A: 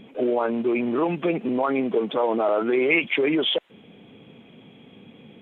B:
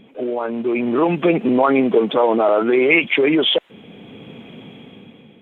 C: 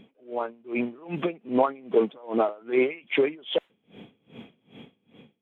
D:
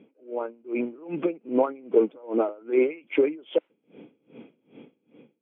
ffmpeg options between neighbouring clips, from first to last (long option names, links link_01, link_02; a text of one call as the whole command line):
ffmpeg -i in.wav -af "dynaudnorm=framelen=250:gausssize=7:maxgain=14dB,volume=-1dB" out.wav
ffmpeg -i in.wav -af "aeval=exprs='val(0)*pow(10,-29*(0.5-0.5*cos(2*PI*2.5*n/s))/20)':channel_layout=same,volume=-4dB" out.wav
ffmpeg -i in.wav -af "highpass=190,equalizer=frequency=200:width_type=q:width=4:gain=-4,equalizer=frequency=310:width_type=q:width=4:gain=6,equalizer=frequency=510:width_type=q:width=4:gain=3,equalizer=frequency=720:width_type=q:width=4:gain=-6,equalizer=frequency=1100:width_type=q:width=4:gain=-6,equalizer=frequency=1800:width_type=q:width=4:gain=-10,lowpass=frequency=2400:width=0.5412,lowpass=frequency=2400:width=1.3066" out.wav